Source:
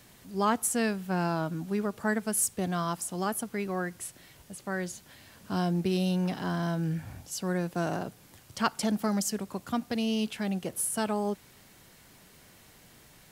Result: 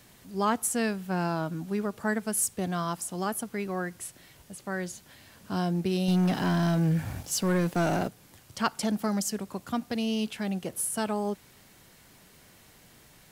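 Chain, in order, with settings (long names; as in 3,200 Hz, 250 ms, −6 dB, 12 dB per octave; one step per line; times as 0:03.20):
0:06.08–0:08.08: leveller curve on the samples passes 2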